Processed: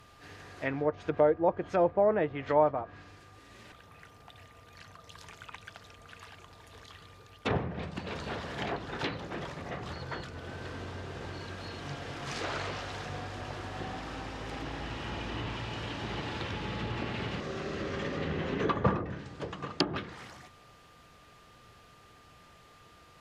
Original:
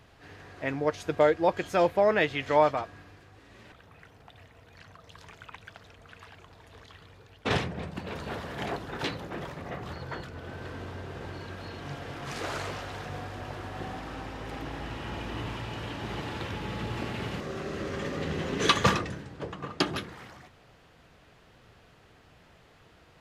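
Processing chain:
treble cut that deepens with the level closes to 960 Hz, closed at −24 dBFS
high-shelf EQ 4,200 Hz +8.5 dB
steady tone 1,200 Hz −58 dBFS
level −1.5 dB

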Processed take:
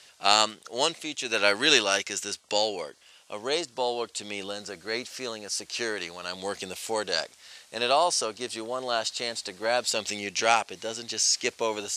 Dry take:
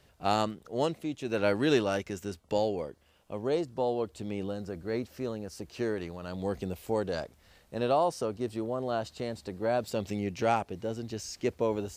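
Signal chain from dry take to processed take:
meter weighting curve ITU-R 468
level +6 dB

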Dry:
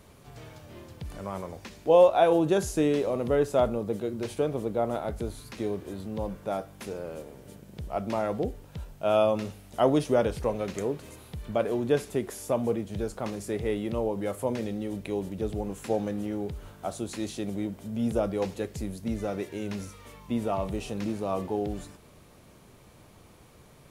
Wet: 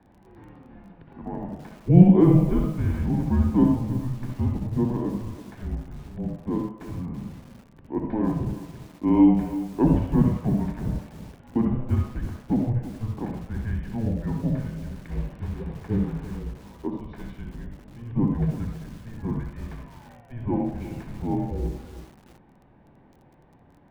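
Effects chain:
0:14.94–0:16.39: noise that follows the level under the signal 11 dB
single-sideband voice off tune −350 Hz 390–3,100 Hz
convolution reverb RT60 0.70 s, pre-delay 60 ms, DRR 2.5 dB
surface crackle 19 per second −38 dBFS
feedback echo at a low word length 332 ms, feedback 35%, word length 5 bits, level −13 dB
level −9.5 dB

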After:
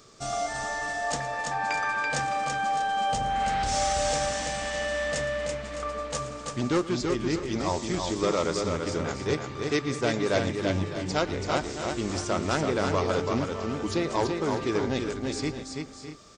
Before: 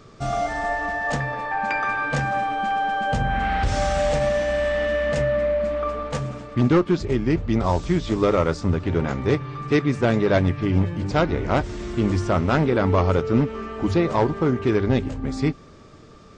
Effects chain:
bass and treble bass −7 dB, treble +14 dB
on a send: multi-tap delay 114/333/608/641 ms −18/−4.5/−13/−14.5 dB
on the sum: level −6 dB

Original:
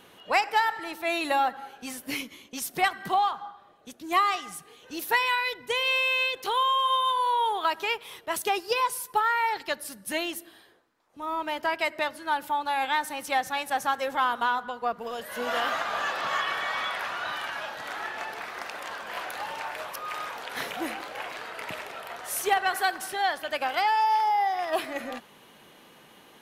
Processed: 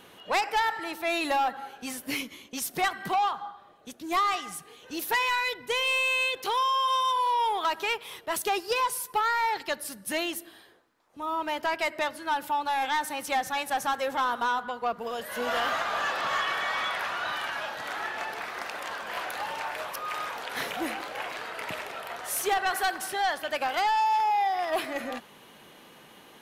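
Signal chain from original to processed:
soft clipping −21.5 dBFS, distortion −14 dB
level +1.5 dB

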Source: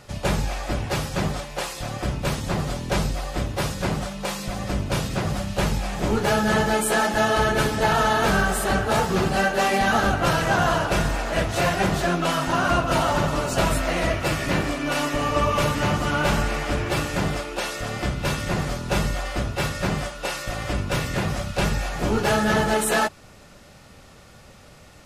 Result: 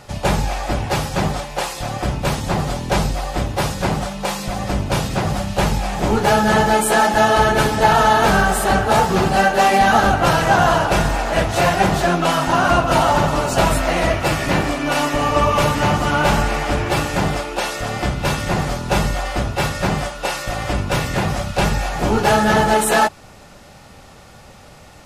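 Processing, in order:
parametric band 820 Hz +5.5 dB 0.47 octaves
level +4.5 dB

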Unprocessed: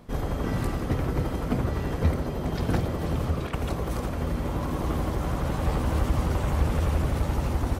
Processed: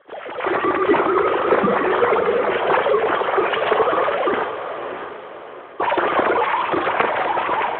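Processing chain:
three sine waves on the formant tracks
high-pass filter 610 Hz 6 dB per octave
0:00.81–0:02.24: dynamic equaliser 1,100 Hz, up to +4 dB, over −41 dBFS, Q 2.3
automatic gain control gain up to 12.5 dB
flanger 1.4 Hz, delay 3.3 ms, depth 3 ms, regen +79%
0:04.43–0:05.80: gate with flip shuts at −20 dBFS, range −42 dB
feedback delay with all-pass diffusion 624 ms, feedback 41%, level −9 dB
four-comb reverb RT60 0.39 s, combs from 31 ms, DRR 7.5 dB
level +3 dB
Speex 11 kbit/s 8,000 Hz

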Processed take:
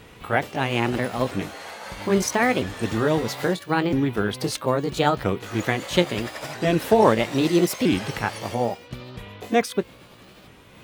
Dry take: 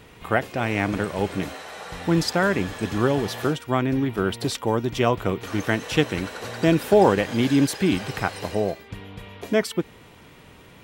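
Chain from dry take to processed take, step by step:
pitch shifter swept by a sawtooth +4.5 semitones, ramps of 1,309 ms
level +1.5 dB
AC-3 128 kbit/s 44,100 Hz

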